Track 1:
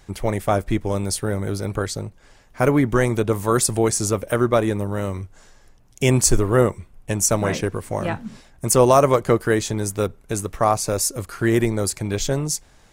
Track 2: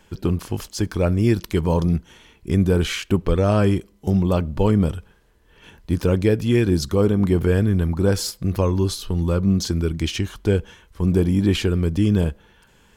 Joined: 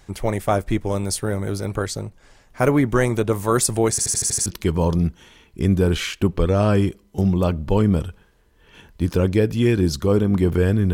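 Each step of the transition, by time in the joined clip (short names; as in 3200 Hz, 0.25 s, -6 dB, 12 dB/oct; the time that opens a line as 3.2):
track 1
3.9 stutter in place 0.08 s, 7 plays
4.46 switch to track 2 from 1.35 s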